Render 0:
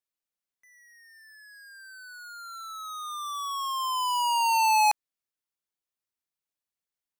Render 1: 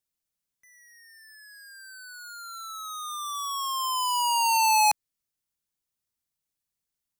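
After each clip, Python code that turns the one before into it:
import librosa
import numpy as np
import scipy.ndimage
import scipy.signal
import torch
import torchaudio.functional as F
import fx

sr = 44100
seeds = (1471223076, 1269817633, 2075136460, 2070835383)

y = fx.bass_treble(x, sr, bass_db=10, treble_db=6)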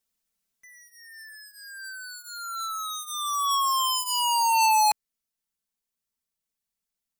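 y = x + 0.76 * np.pad(x, (int(4.5 * sr / 1000.0), 0))[:len(x)]
y = fx.rider(y, sr, range_db=3, speed_s=0.5)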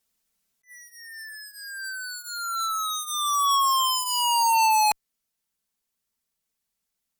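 y = fx.cheby_harmonics(x, sr, harmonics=(2, 5), levels_db=(-38, -16), full_scale_db=-14.0)
y = fx.attack_slew(y, sr, db_per_s=320.0)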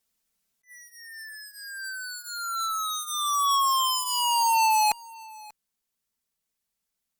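y = x + 10.0 ** (-22.5 / 20.0) * np.pad(x, (int(588 * sr / 1000.0), 0))[:len(x)]
y = y * librosa.db_to_amplitude(-1.5)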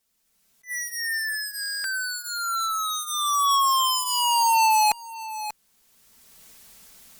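y = fx.recorder_agc(x, sr, target_db=-25.5, rise_db_per_s=20.0, max_gain_db=30)
y = fx.buffer_glitch(y, sr, at_s=(1.61,), block=1024, repeats=9)
y = y * librosa.db_to_amplitude(2.5)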